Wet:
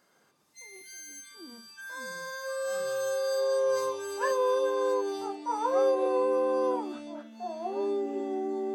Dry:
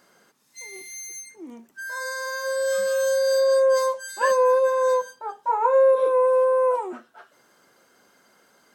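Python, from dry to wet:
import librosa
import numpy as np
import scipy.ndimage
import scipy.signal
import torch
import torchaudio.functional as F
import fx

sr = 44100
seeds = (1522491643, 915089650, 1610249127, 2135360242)

y = fx.echo_pitch(x, sr, ms=112, semitones=-5, count=3, db_per_echo=-6.0)
y = y * librosa.db_to_amplitude(-8.5)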